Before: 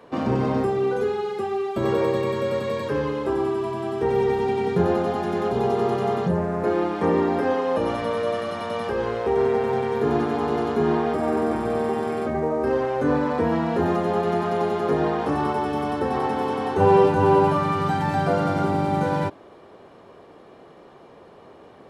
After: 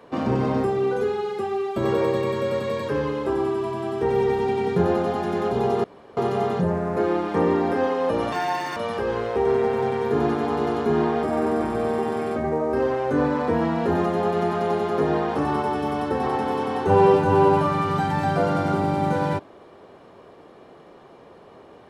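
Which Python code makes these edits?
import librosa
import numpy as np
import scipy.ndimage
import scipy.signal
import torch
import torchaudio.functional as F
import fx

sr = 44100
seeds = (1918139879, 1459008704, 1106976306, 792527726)

y = fx.edit(x, sr, fx.insert_room_tone(at_s=5.84, length_s=0.33),
    fx.speed_span(start_s=7.99, length_s=0.68, speed=1.53), tone=tone)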